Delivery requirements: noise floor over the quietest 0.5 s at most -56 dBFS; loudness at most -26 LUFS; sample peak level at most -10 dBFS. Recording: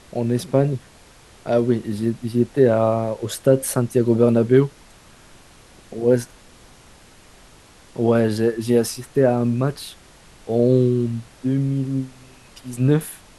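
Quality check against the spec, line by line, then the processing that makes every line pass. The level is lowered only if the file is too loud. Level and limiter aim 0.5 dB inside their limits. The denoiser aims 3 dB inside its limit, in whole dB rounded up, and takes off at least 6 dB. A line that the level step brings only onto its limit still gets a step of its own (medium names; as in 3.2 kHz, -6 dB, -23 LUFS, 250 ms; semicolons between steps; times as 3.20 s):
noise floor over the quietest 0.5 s -48 dBFS: fail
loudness -20.0 LUFS: fail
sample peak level -3.0 dBFS: fail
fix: noise reduction 6 dB, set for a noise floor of -48 dBFS; trim -6.5 dB; peak limiter -10.5 dBFS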